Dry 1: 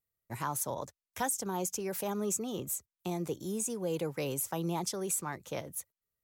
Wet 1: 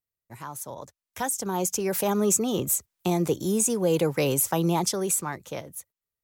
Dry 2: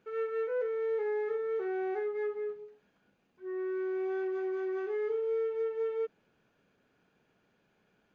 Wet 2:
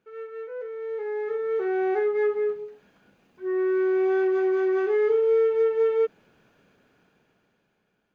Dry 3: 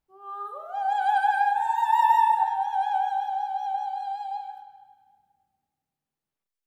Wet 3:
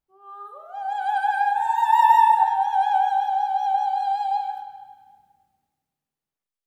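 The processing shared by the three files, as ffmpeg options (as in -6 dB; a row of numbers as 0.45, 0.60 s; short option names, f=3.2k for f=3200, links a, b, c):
-af "dynaudnorm=f=270:g=11:m=15dB,volume=-4dB"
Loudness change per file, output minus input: +10.0, +9.5, +4.0 LU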